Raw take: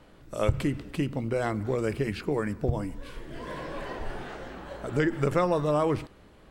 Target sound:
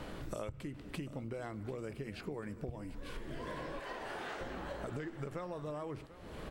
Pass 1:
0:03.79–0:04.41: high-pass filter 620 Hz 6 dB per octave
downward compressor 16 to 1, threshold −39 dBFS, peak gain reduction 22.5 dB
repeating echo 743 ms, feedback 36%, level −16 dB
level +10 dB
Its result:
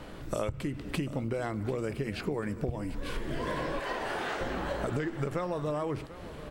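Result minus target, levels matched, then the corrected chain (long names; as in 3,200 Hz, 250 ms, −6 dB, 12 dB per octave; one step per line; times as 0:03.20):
downward compressor: peak gain reduction −9.5 dB
0:03.79–0:04.41: high-pass filter 620 Hz 6 dB per octave
downward compressor 16 to 1, threshold −49 dBFS, peak gain reduction 32 dB
repeating echo 743 ms, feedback 36%, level −16 dB
level +10 dB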